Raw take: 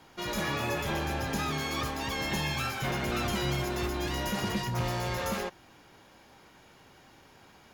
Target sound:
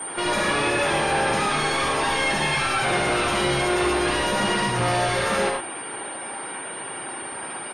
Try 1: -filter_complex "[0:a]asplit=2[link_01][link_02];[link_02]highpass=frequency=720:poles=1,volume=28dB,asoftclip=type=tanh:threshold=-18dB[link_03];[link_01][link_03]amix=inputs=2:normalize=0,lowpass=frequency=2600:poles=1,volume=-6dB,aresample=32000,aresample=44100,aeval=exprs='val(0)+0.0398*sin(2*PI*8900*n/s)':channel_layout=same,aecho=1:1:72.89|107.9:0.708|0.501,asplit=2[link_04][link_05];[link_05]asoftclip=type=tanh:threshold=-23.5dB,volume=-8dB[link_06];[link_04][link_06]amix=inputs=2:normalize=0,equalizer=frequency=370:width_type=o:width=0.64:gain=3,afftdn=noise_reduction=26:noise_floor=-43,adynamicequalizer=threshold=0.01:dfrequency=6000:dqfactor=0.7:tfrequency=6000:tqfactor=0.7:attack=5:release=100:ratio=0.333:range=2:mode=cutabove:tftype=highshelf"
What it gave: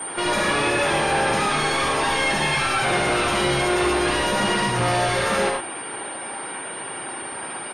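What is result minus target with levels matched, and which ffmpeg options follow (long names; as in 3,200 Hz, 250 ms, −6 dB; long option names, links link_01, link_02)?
soft clipping: distortion −8 dB
-filter_complex "[0:a]asplit=2[link_01][link_02];[link_02]highpass=frequency=720:poles=1,volume=28dB,asoftclip=type=tanh:threshold=-18dB[link_03];[link_01][link_03]amix=inputs=2:normalize=0,lowpass=frequency=2600:poles=1,volume=-6dB,aresample=32000,aresample=44100,aeval=exprs='val(0)+0.0398*sin(2*PI*8900*n/s)':channel_layout=same,aecho=1:1:72.89|107.9:0.708|0.501,asplit=2[link_04][link_05];[link_05]asoftclip=type=tanh:threshold=-35.5dB,volume=-8dB[link_06];[link_04][link_06]amix=inputs=2:normalize=0,equalizer=frequency=370:width_type=o:width=0.64:gain=3,afftdn=noise_reduction=26:noise_floor=-43,adynamicequalizer=threshold=0.01:dfrequency=6000:dqfactor=0.7:tfrequency=6000:tqfactor=0.7:attack=5:release=100:ratio=0.333:range=2:mode=cutabove:tftype=highshelf"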